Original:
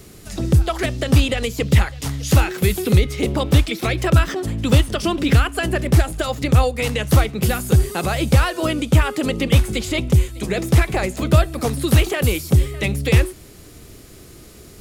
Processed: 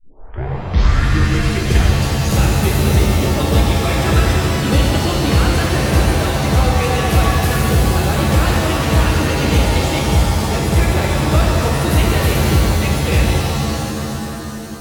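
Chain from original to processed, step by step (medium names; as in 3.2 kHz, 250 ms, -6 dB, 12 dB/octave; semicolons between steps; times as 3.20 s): tape start-up on the opening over 1.97 s; pitch-shifted reverb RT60 3.1 s, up +7 st, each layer -2 dB, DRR -2.5 dB; trim -3.5 dB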